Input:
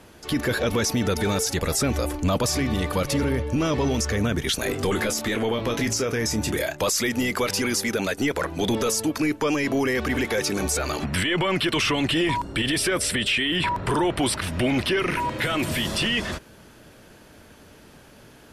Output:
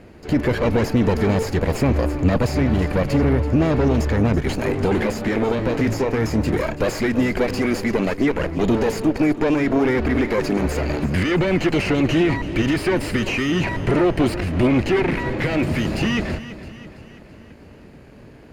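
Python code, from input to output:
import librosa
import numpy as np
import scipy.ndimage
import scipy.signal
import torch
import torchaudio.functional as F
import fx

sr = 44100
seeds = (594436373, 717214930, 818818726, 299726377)

y = fx.lower_of_two(x, sr, delay_ms=0.43)
y = fx.lowpass(y, sr, hz=1100.0, slope=6)
y = fx.echo_feedback(y, sr, ms=332, feedback_pct=52, wet_db=-14.5)
y = y * 10.0 ** (7.0 / 20.0)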